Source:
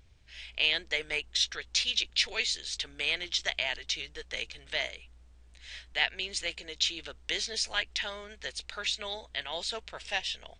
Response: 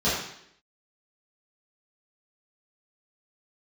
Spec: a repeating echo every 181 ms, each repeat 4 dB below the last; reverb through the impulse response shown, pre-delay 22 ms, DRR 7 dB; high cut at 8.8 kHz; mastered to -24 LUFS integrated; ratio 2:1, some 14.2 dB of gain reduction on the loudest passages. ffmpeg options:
-filter_complex "[0:a]lowpass=8800,acompressor=threshold=0.00316:ratio=2,aecho=1:1:181|362|543|724|905|1086|1267|1448|1629:0.631|0.398|0.25|0.158|0.0994|0.0626|0.0394|0.0249|0.0157,asplit=2[s0][s1];[1:a]atrim=start_sample=2205,adelay=22[s2];[s1][s2]afir=irnorm=-1:irlink=0,volume=0.0841[s3];[s0][s3]amix=inputs=2:normalize=0,volume=7.08"

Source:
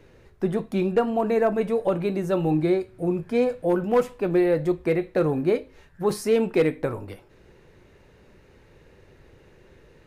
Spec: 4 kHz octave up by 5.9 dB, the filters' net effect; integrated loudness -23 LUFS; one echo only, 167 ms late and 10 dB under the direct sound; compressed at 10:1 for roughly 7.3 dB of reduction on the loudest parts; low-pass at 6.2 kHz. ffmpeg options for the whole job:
-af "lowpass=6200,equalizer=f=4000:t=o:g=8,acompressor=threshold=0.0708:ratio=10,aecho=1:1:167:0.316,volume=1.88"

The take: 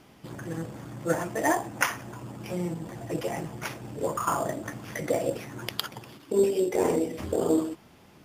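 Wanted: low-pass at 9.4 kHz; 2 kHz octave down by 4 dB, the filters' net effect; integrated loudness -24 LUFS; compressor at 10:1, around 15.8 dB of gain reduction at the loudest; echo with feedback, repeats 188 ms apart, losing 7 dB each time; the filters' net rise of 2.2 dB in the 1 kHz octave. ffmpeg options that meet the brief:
-af "lowpass=9400,equalizer=f=1000:t=o:g=4.5,equalizer=f=2000:t=o:g=-7,acompressor=threshold=0.0178:ratio=10,aecho=1:1:188|376|564|752|940:0.447|0.201|0.0905|0.0407|0.0183,volume=5.96"

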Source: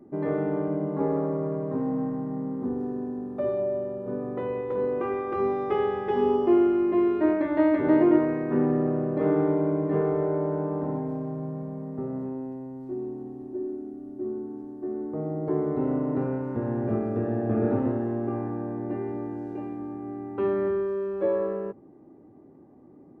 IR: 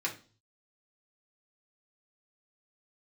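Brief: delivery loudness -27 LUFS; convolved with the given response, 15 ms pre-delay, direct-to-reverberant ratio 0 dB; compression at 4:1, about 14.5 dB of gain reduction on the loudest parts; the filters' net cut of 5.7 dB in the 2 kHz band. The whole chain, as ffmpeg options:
-filter_complex "[0:a]equalizer=f=2000:t=o:g=-7.5,acompressor=threshold=0.02:ratio=4,asplit=2[s0][s1];[1:a]atrim=start_sample=2205,adelay=15[s2];[s1][s2]afir=irnorm=-1:irlink=0,volume=0.562[s3];[s0][s3]amix=inputs=2:normalize=0,volume=2"

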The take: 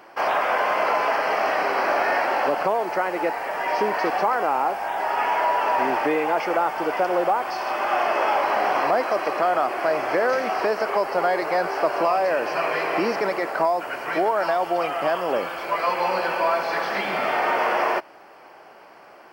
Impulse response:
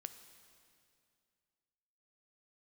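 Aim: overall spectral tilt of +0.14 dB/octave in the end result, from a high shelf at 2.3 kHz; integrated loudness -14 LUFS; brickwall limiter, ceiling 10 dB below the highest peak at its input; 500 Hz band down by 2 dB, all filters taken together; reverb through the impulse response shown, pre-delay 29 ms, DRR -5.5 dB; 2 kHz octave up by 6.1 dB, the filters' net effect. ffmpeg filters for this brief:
-filter_complex "[0:a]equalizer=f=500:t=o:g=-3.5,equalizer=f=2000:t=o:g=4.5,highshelf=f=2300:g=7,alimiter=limit=0.133:level=0:latency=1,asplit=2[s0][s1];[1:a]atrim=start_sample=2205,adelay=29[s2];[s1][s2]afir=irnorm=-1:irlink=0,volume=3.16[s3];[s0][s3]amix=inputs=2:normalize=0,volume=1.78"

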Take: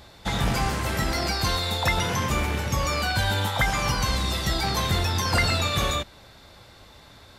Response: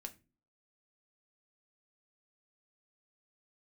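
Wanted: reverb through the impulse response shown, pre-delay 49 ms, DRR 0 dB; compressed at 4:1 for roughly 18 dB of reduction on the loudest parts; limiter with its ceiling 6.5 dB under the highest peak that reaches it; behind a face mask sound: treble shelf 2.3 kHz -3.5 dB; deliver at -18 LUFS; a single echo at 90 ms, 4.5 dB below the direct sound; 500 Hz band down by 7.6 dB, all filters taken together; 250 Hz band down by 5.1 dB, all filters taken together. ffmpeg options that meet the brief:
-filter_complex "[0:a]equalizer=f=250:t=o:g=-5.5,equalizer=f=500:t=o:g=-8.5,acompressor=threshold=0.00708:ratio=4,alimiter=level_in=3.76:limit=0.0631:level=0:latency=1,volume=0.266,aecho=1:1:90:0.596,asplit=2[s0][s1];[1:a]atrim=start_sample=2205,adelay=49[s2];[s1][s2]afir=irnorm=-1:irlink=0,volume=1.68[s3];[s0][s3]amix=inputs=2:normalize=0,highshelf=f=2300:g=-3.5,volume=15.8"

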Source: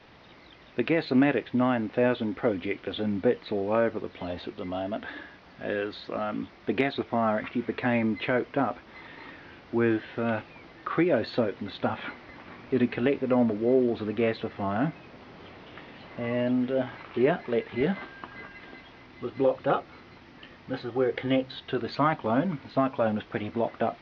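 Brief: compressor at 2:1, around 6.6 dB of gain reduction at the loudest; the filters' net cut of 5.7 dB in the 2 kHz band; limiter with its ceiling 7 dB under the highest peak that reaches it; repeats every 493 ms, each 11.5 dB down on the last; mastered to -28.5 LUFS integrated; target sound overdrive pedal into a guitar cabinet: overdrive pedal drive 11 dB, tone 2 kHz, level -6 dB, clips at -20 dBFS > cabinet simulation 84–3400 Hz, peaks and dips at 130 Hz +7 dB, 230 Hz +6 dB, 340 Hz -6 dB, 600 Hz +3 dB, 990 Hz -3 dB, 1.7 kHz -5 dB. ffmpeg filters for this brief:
-filter_complex "[0:a]equalizer=f=2000:t=o:g=-4,acompressor=threshold=0.0316:ratio=2,alimiter=limit=0.0794:level=0:latency=1,aecho=1:1:493|986|1479:0.266|0.0718|0.0194,asplit=2[s0][s1];[s1]highpass=f=720:p=1,volume=3.55,asoftclip=type=tanh:threshold=0.1[s2];[s0][s2]amix=inputs=2:normalize=0,lowpass=f=2000:p=1,volume=0.501,highpass=84,equalizer=f=130:t=q:w=4:g=7,equalizer=f=230:t=q:w=4:g=6,equalizer=f=340:t=q:w=4:g=-6,equalizer=f=600:t=q:w=4:g=3,equalizer=f=990:t=q:w=4:g=-3,equalizer=f=1700:t=q:w=4:g=-5,lowpass=f=3400:w=0.5412,lowpass=f=3400:w=1.3066,volume=1.78"

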